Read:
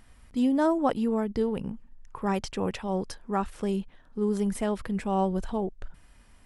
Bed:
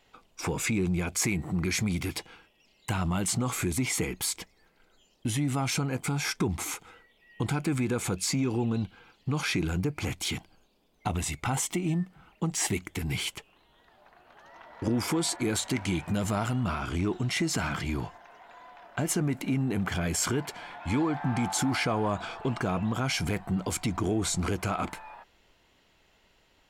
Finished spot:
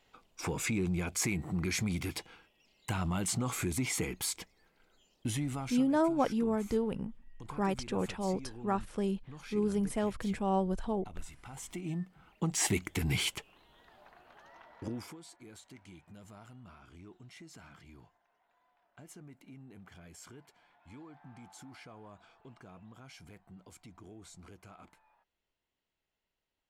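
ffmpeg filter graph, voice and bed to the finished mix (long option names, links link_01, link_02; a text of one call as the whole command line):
ffmpeg -i stem1.wav -i stem2.wav -filter_complex "[0:a]adelay=5350,volume=-4dB[link_01];[1:a]volume=15dB,afade=type=out:start_time=5.3:duration=0.56:silence=0.177828,afade=type=in:start_time=11.52:duration=1.35:silence=0.105925,afade=type=out:start_time=13.99:duration=1.18:silence=0.0630957[link_02];[link_01][link_02]amix=inputs=2:normalize=0" out.wav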